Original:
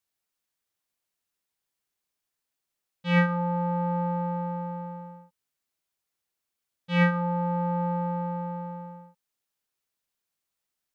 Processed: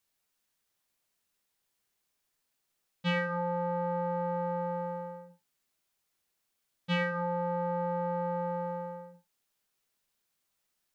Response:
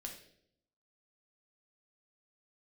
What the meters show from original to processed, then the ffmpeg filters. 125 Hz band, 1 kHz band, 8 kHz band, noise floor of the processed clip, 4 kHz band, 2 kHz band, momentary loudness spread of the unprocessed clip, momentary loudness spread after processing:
-9.0 dB, -3.5 dB, no reading, -81 dBFS, -1.0 dB, -5.0 dB, 15 LU, 12 LU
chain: -filter_complex "[0:a]acompressor=threshold=0.0316:ratio=10,asplit=2[s0][s1];[1:a]atrim=start_sample=2205,atrim=end_sample=6174[s2];[s1][s2]afir=irnorm=-1:irlink=0,volume=1.12[s3];[s0][s3]amix=inputs=2:normalize=0"

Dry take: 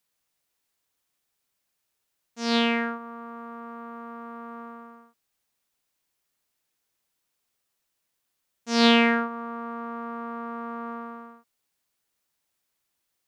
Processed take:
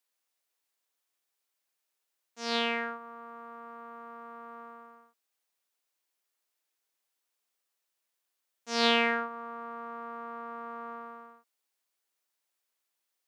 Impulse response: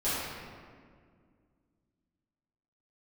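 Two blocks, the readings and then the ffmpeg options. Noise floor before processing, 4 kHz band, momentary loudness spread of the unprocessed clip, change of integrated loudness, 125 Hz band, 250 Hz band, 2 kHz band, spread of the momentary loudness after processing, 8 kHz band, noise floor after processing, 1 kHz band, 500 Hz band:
-79 dBFS, -4.5 dB, 20 LU, -6.0 dB, no reading, -13.0 dB, -4.5 dB, 20 LU, -4.5 dB, -83 dBFS, -4.5 dB, -5.5 dB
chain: -af "highpass=360,volume=0.596"

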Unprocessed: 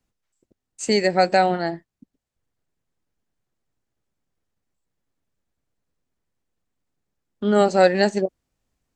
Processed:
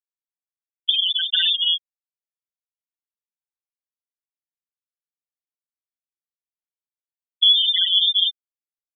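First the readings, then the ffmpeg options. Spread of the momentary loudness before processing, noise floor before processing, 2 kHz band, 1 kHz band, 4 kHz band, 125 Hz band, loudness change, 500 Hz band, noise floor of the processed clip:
12 LU, -83 dBFS, -8.0 dB, under -40 dB, +18.0 dB, under -40 dB, +3.0 dB, under -40 dB, under -85 dBFS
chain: -filter_complex "[0:a]asplit=2[s0][s1];[s1]adelay=129,lowpass=f=1600:p=1,volume=0.0891,asplit=2[s2][s3];[s3]adelay=129,lowpass=f=1600:p=1,volume=0.25[s4];[s2][s4]amix=inputs=2:normalize=0[s5];[s0][s5]amix=inputs=2:normalize=0,aeval=exprs='(mod(4.47*val(0)+1,2)-1)/4.47':c=same,equalizer=f=61:w=4.2:g=-7,dynaudnorm=f=150:g=13:m=1.88,lowshelf=f=210:g=10.5,lowpass=f=3100:t=q:w=0.5098,lowpass=f=3100:t=q:w=0.6013,lowpass=f=3100:t=q:w=0.9,lowpass=f=3100:t=q:w=2.563,afreqshift=-3600,acompressor=threshold=0.112:ratio=5,aeval=exprs='sgn(val(0))*max(abs(val(0))-0.00237,0)':c=same,bandreject=f=2300:w=9.6,asplit=2[s6][s7];[s7]adelay=41,volume=0.398[s8];[s6][s8]amix=inputs=2:normalize=0,afftfilt=real='re*gte(hypot(re,im),0.355)':imag='im*gte(hypot(re,im),0.355)':win_size=1024:overlap=0.75,volume=1.88"

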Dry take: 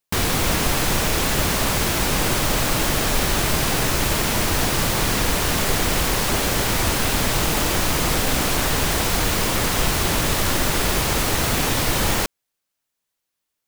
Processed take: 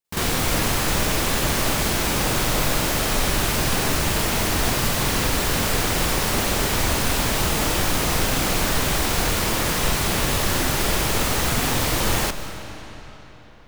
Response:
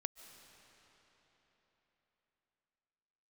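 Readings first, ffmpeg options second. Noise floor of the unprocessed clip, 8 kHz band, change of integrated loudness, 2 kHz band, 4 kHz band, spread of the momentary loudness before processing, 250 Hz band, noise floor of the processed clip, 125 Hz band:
-80 dBFS, -1.0 dB, -1.0 dB, -1.0 dB, -1.0 dB, 0 LU, -1.0 dB, -41 dBFS, -1.0 dB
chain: -filter_complex "[0:a]asplit=2[s0][s1];[1:a]atrim=start_sample=2205,adelay=46[s2];[s1][s2]afir=irnorm=-1:irlink=0,volume=2.99[s3];[s0][s3]amix=inputs=2:normalize=0,volume=0.355"

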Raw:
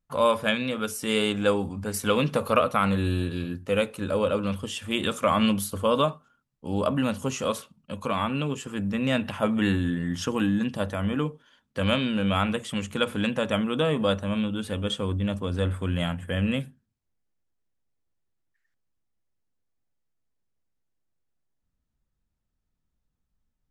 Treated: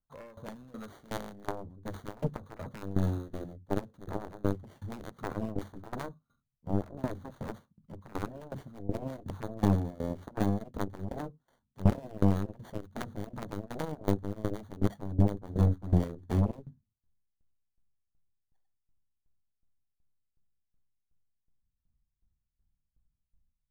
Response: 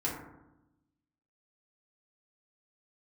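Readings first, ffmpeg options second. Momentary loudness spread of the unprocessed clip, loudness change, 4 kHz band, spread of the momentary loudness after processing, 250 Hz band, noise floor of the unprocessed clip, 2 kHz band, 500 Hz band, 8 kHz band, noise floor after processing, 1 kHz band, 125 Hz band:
7 LU, -8.0 dB, -23.0 dB, 16 LU, -7.5 dB, -79 dBFS, -17.5 dB, -11.5 dB, under -15 dB, -84 dBFS, -12.0 dB, -2.5 dB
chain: -filter_complex "[0:a]acrossover=split=490[s0][s1];[s1]acompressor=threshold=0.0316:ratio=5[s2];[s0][s2]amix=inputs=2:normalize=0,acrossover=split=1400[s3][s4];[s3]asubboost=boost=6.5:cutoff=190[s5];[s4]acrusher=samples=17:mix=1:aa=0.000001[s6];[s5][s6]amix=inputs=2:normalize=0,aeval=exprs='0.596*(cos(1*acos(clip(val(0)/0.596,-1,1)))-cos(1*PI/2))+0.0299*(cos(3*acos(clip(val(0)/0.596,-1,1)))-cos(3*PI/2))+0.075*(cos(4*acos(clip(val(0)/0.596,-1,1)))-cos(4*PI/2))+0.119*(cos(7*acos(clip(val(0)/0.596,-1,1)))-cos(7*PI/2))':c=same,asplit=2[s7][s8];[s8]acompressor=threshold=0.0562:ratio=6,volume=1.12[s9];[s7][s9]amix=inputs=2:normalize=0,aeval=exprs='val(0)*pow(10,-19*if(lt(mod(2.7*n/s,1),2*abs(2.7)/1000),1-mod(2.7*n/s,1)/(2*abs(2.7)/1000),(mod(2.7*n/s,1)-2*abs(2.7)/1000)/(1-2*abs(2.7)/1000))/20)':c=same,volume=0.376"

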